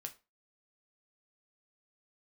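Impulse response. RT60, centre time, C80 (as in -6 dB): 0.30 s, 7 ms, 23.0 dB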